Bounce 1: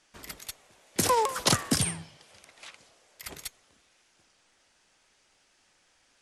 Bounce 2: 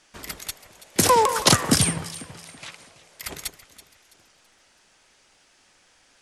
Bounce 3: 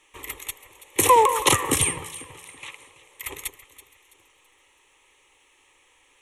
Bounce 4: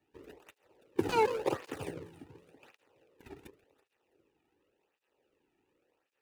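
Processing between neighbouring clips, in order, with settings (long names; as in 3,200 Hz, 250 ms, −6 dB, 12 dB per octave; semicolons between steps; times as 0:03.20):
delay that swaps between a low-pass and a high-pass 165 ms, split 2,000 Hz, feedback 59%, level −12 dB; level +7 dB
low-shelf EQ 340 Hz −4.5 dB; phaser with its sweep stopped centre 1,000 Hz, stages 8; level +3.5 dB
running median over 41 samples; high-shelf EQ 5,100 Hz −5.5 dB; through-zero flanger with one copy inverted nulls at 0.9 Hz, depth 2 ms; level −2 dB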